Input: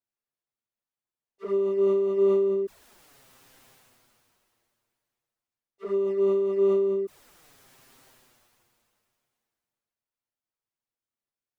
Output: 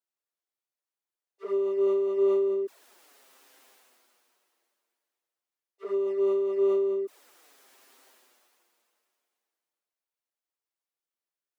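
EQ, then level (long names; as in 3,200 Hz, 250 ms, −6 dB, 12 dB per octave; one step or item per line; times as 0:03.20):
high-pass filter 300 Hz 24 dB per octave
−1.5 dB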